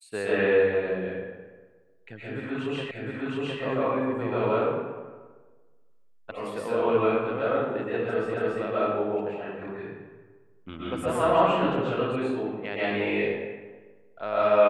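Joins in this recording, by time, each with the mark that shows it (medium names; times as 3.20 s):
2.91 s: repeat of the last 0.71 s
6.31 s: sound stops dead
8.34 s: repeat of the last 0.28 s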